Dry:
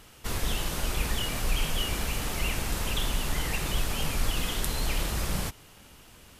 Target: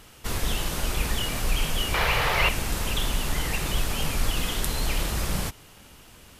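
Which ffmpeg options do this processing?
-filter_complex "[0:a]asettb=1/sr,asplit=3[s0][s1][s2];[s0]atrim=end=1.944[s3];[s1]atrim=start=1.94:end=2.49,asetpts=PTS-STARTPTS,afade=t=in:d=0.004:c=qsin,afade=t=out:st=0.546:d=0.004:c=qsin,equalizer=f=125:t=o:w=1:g=7,equalizer=f=250:t=o:w=1:g=-11,equalizer=f=500:t=o:w=1:g=9,equalizer=f=1000:t=o:w=1:g=9,equalizer=f=2000:t=o:w=1:g=10,equalizer=f=4000:t=o:w=1:g=5,equalizer=f=8000:t=o:w=1:g=-6[s4];[s2]atrim=start=2.486[s5];[s3][s4]acrossfade=d=0.004:c1=hsin:c2=qsin[s6];[s6][s5]acrossfade=d=0.004:c1=qsin:c2=hsin,volume=1.33"

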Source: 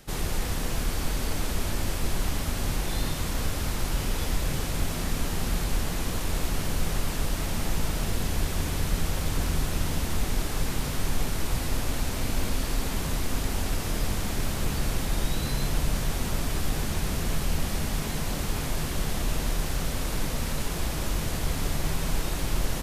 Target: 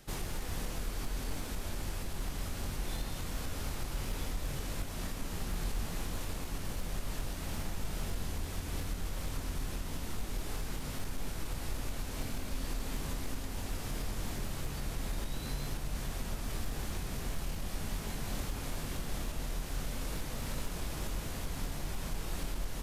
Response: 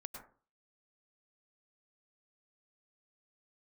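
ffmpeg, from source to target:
-filter_complex "[0:a]alimiter=limit=0.0794:level=0:latency=1:release=433,asoftclip=type=hard:threshold=0.0596,asplit=2[s0][s1];[1:a]atrim=start_sample=2205,adelay=22[s2];[s1][s2]afir=irnorm=-1:irlink=0,volume=0.708[s3];[s0][s3]amix=inputs=2:normalize=0,volume=0.531"

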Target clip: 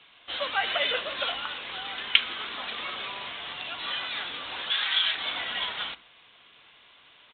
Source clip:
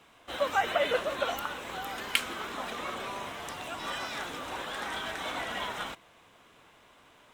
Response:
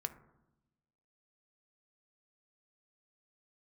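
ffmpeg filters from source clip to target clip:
-filter_complex "[0:a]aemphasis=mode=production:type=75kf,crystalizer=i=7.5:c=0,asettb=1/sr,asplit=3[s0][s1][s2];[s0]atrim=end=4.704[s3];[s1]atrim=start=4.7:end=5.15,asetpts=PTS-STARTPTS,afade=t=in:d=0.004:c=qsin,afade=t=out:st=0.446:d=0.004:c=qsin,tiltshelf=f=970:g=-9[s4];[s2]atrim=start=5.146[s5];[s3][s4]acrossfade=d=0.004:c1=hsin:c2=qsin[s6];[s6][s5]acrossfade=d=0.004:c1=qsin:c2=hsin,asplit=2[s7][s8];[1:a]atrim=start_sample=2205,atrim=end_sample=6615[s9];[s8][s9]afir=irnorm=-1:irlink=0,volume=0.891[s10];[s7][s10]amix=inputs=2:normalize=0,aresample=8000,aresample=44100,volume=0.266"

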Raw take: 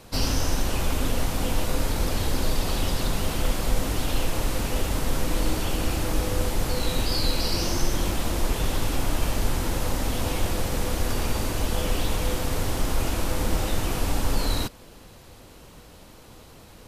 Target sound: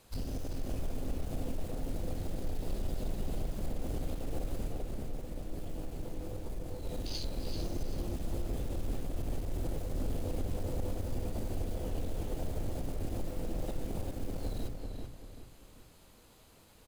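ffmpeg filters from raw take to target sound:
-filter_complex "[0:a]aemphasis=mode=production:type=cd,bandreject=f=5600:w=11,afwtdn=0.0562,highshelf=f=9800:g=-6,bandreject=f=60:t=h:w=6,bandreject=f=120:t=h:w=6,bandreject=f=180:t=h:w=6,bandreject=f=240:t=h:w=6,bandreject=f=300:t=h:w=6,acompressor=threshold=0.0501:ratio=4,alimiter=level_in=1.58:limit=0.0631:level=0:latency=1:release=130,volume=0.631,acrusher=bits=4:mode=log:mix=0:aa=0.000001,asoftclip=type=tanh:threshold=0.0237,asettb=1/sr,asplit=3[s0][s1][s2];[s0]atrim=end=4.674[s3];[s1]atrim=start=4.67:end=6.86,asetpts=PTS-STARTPTS,afade=t=in:d=0.004:c=qsin,afade=t=out:st=2.186:d=0.004:c=qsin,flanger=delay=6.4:depth=8.8:regen=-69:speed=1.6:shape=sinusoidal[s4];[s2]atrim=start=6.856[s5];[s3][s4]acrossfade=d=0.004:c1=hsin:c2=qsin[s6];[s6][s5]acrossfade=d=0.004:c1=qsin:c2=hsin,asplit=2[s7][s8];[s8]adelay=388,lowpass=f=4000:p=1,volume=0.631,asplit=2[s9][s10];[s10]adelay=388,lowpass=f=4000:p=1,volume=0.38,asplit=2[s11][s12];[s12]adelay=388,lowpass=f=4000:p=1,volume=0.38,asplit=2[s13][s14];[s14]adelay=388,lowpass=f=4000:p=1,volume=0.38,asplit=2[s15][s16];[s16]adelay=388,lowpass=f=4000:p=1,volume=0.38[s17];[s7][s9][s11][s13][s15][s17]amix=inputs=6:normalize=0,volume=1.33"

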